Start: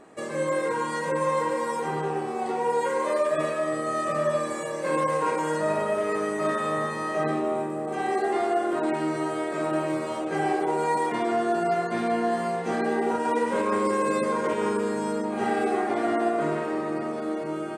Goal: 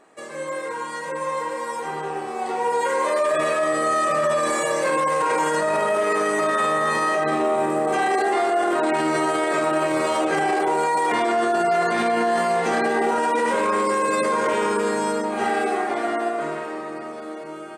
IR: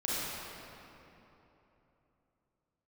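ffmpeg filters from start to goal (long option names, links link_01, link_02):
-af "lowshelf=frequency=350:gain=-12,dynaudnorm=framelen=510:gausssize=13:maxgain=15dB,alimiter=limit=-13.5dB:level=0:latency=1:release=13"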